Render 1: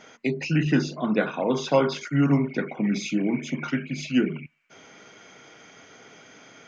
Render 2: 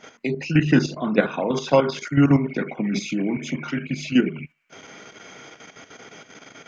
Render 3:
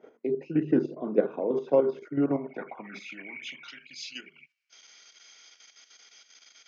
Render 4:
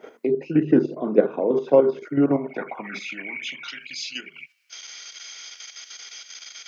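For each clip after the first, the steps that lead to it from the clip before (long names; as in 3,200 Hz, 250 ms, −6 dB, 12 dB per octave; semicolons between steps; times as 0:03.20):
output level in coarse steps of 10 dB; level +7 dB
band-pass filter sweep 410 Hz → 4,800 Hz, 0:02.13–0:03.83
one half of a high-frequency compander encoder only; level +6.5 dB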